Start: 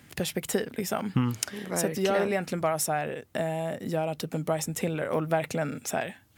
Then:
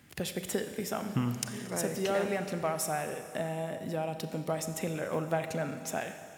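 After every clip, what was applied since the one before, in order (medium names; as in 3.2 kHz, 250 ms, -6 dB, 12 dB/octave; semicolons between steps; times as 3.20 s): Schroeder reverb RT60 2.5 s, combs from 29 ms, DRR 8 dB; trim -5 dB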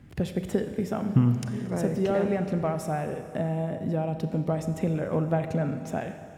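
tilt EQ -3.5 dB/octave; trim +1 dB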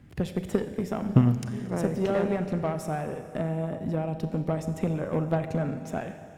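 Chebyshev shaper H 3 -16 dB, 8 -32 dB, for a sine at -9 dBFS; trim +4 dB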